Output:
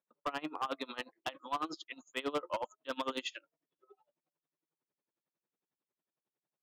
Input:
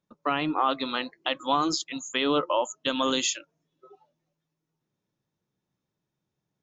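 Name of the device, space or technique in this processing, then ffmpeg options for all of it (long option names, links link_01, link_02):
helicopter radio: -af "highpass=330,lowpass=2800,aeval=exprs='val(0)*pow(10,-23*(0.5-0.5*cos(2*PI*11*n/s))/20)':channel_layout=same,asoftclip=type=hard:threshold=-26dB,volume=-2.5dB"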